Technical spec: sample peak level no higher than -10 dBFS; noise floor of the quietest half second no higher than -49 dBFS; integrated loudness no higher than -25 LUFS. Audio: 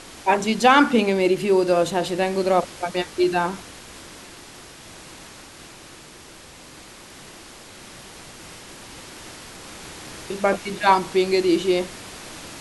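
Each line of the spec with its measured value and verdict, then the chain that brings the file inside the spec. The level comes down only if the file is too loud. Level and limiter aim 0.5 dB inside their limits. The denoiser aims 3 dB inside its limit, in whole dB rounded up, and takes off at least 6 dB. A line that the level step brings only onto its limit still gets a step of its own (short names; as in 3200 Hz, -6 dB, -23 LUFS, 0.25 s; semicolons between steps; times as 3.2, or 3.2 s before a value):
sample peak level -2.5 dBFS: fail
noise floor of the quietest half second -44 dBFS: fail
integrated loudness -20.5 LUFS: fail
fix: denoiser 6 dB, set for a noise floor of -44 dBFS; gain -5 dB; limiter -10.5 dBFS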